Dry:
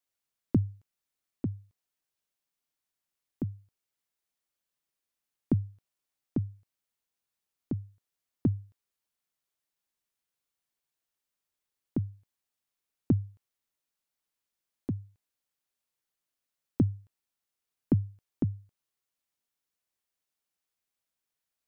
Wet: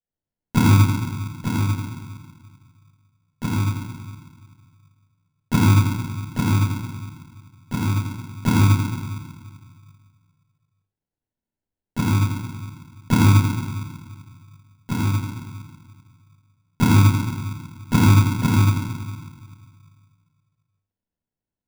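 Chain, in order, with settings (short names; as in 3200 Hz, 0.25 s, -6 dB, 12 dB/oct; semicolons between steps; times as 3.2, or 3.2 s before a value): shoebox room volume 850 m³, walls mixed, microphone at 6.5 m; low-pass opened by the level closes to 440 Hz; sample-rate reducer 1200 Hz, jitter 0%; gain -2 dB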